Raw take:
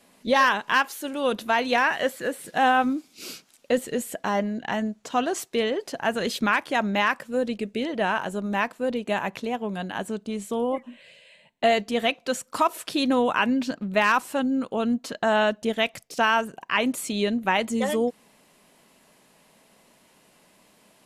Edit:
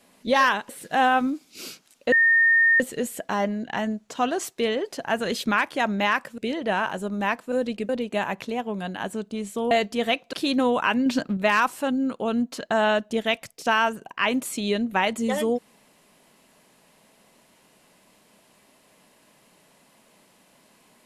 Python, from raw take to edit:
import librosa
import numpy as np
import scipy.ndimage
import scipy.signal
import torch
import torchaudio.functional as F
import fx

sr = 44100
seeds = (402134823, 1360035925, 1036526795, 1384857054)

y = fx.edit(x, sr, fx.cut(start_s=0.69, length_s=1.63),
    fx.insert_tone(at_s=3.75, length_s=0.68, hz=1830.0, db=-14.5),
    fx.move(start_s=7.33, length_s=0.37, to_s=8.84),
    fx.cut(start_s=10.66, length_s=1.01),
    fx.cut(start_s=12.29, length_s=0.56),
    fx.clip_gain(start_s=13.58, length_s=0.31, db=4.5), tone=tone)